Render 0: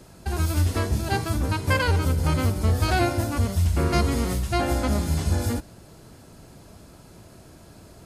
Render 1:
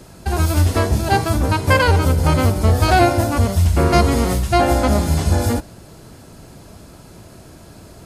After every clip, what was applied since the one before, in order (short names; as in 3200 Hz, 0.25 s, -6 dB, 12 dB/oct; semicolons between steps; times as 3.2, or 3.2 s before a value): dynamic EQ 700 Hz, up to +5 dB, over -38 dBFS, Q 1.1; gain +6.5 dB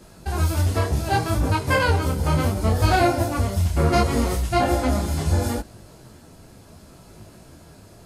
detuned doubles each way 24 cents; gain -1.5 dB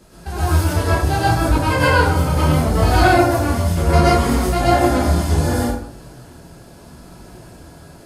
plate-style reverb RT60 0.57 s, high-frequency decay 0.6×, pre-delay 95 ms, DRR -6.5 dB; gain -1.5 dB